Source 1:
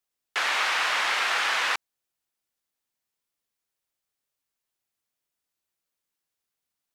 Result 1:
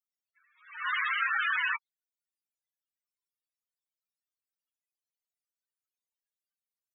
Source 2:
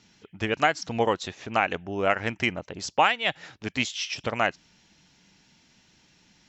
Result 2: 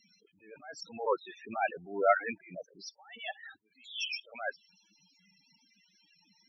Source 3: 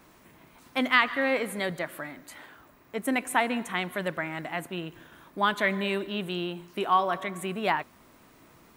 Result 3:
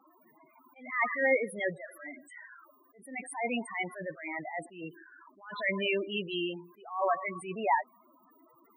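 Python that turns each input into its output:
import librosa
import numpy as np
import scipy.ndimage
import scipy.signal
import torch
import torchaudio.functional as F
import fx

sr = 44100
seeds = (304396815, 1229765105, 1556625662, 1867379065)

y = fx.highpass(x, sr, hz=510.0, slope=6)
y = fx.dynamic_eq(y, sr, hz=3600.0, q=2.9, threshold_db=-45.0, ratio=4.0, max_db=3)
y = fx.spec_topn(y, sr, count=8)
y = fx.attack_slew(y, sr, db_per_s=120.0)
y = F.gain(torch.from_numpy(y), 4.5).numpy()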